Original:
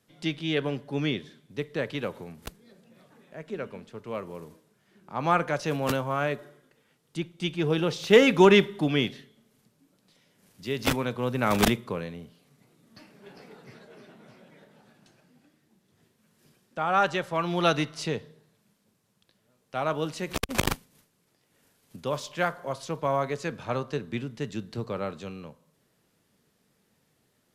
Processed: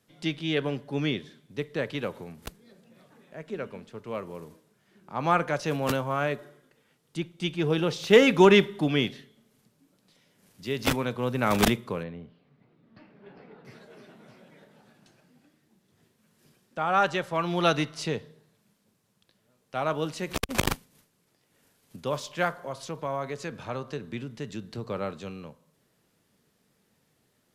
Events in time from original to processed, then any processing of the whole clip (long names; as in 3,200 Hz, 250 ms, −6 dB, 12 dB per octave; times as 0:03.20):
0:12.03–0:13.65: high-frequency loss of the air 350 metres
0:22.65–0:24.86: downward compressor 1.5 to 1, threshold −35 dBFS